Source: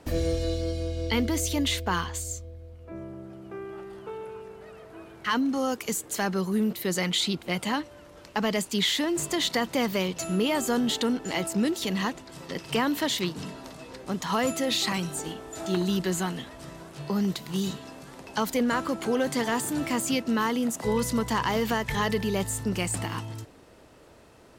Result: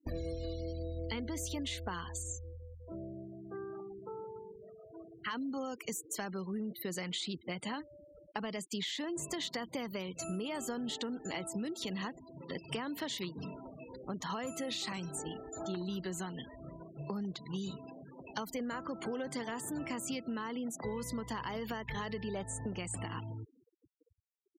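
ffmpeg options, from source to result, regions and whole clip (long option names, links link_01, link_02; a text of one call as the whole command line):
ffmpeg -i in.wav -filter_complex "[0:a]asettb=1/sr,asplit=3[link_01][link_02][link_03];[link_01]atrim=end=4.004[link_04];[link_02]atrim=start=4:end=4.92,asetpts=PTS-STARTPTS,afade=type=in:duration=0.004:curve=qsin,afade=type=out:start_time=0.916:duration=0.004:curve=qsin,lowpass=2100,aemphasis=mode=reproduction:type=50fm,bandreject=frequency=420:width=12[link_05];[link_03]atrim=start=4.916[link_06];[link_04][link_05]acrossfade=duration=0.004:curve1=hsin:curve2=qsin[link_07];[link_07][link_06]acrossfade=duration=0.004:curve1=qsin:curve2=hsin,asettb=1/sr,asplit=3[link_08][link_09][link_10];[link_08]atrim=end=22.284[link_11];[link_09]atrim=start=22.28:end=22.79,asetpts=PTS-STARTPTS,afade=type=in:duration=0.004:curve=qsin,afade=type=out:start_time=0.506:duration=0.004:curve=qsin,lowpass=11000,equalizer=frequency=700:width_type=o:width=0.96:gain=6,asoftclip=type=hard:threshold=-18.5dB[link_12];[link_10]atrim=start=22.786[link_13];[link_11][link_12]acrossfade=duration=0.004:curve1=hsin:curve2=qsin[link_14];[link_14][link_13]acrossfade=duration=0.004:curve1=qsin:curve2=hsin,afftfilt=real='re*gte(hypot(re,im),0.0158)':imag='im*gte(hypot(re,im),0.0158)':win_size=1024:overlap=0.75,acompressor=threshold=-31dB:ratio=6,volume=-4.5dB" out.wav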